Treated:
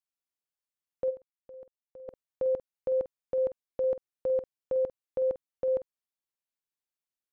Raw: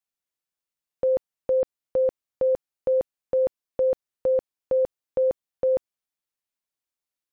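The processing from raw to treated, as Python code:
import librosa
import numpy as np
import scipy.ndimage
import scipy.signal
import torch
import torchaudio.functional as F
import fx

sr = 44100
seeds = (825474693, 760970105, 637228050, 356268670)

y = fx.level_steps(x, sr, step_db=20, at=(1.09, 2.08), fade=0.02)
y = fx.doubler(y, sr, ms=48.0, db=-13.0)
y = y * 10.0 ** (-7.0 / 20.0)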